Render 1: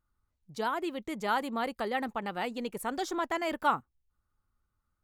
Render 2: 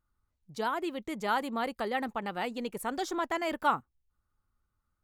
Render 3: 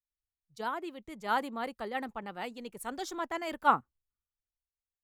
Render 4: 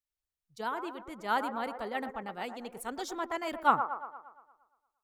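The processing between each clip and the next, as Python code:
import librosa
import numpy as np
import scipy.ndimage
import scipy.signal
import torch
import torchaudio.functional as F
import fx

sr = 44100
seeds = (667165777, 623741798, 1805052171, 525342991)

y1 = x
y2 = fx.band_widen(y1, sr, depth_pct=100)
y2 = y2 * librosa.db_to_amplitude(-4.0)
y3 = fx.echo_wet_bandpass(y2, sr, ms=116, feedback_pct=54, hz=740.0, wet_db=-7.5)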